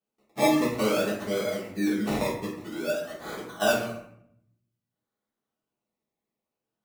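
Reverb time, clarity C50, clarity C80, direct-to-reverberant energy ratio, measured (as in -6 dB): 0.70 s, 4.0 dB, 8.0 dB, -8.5 dB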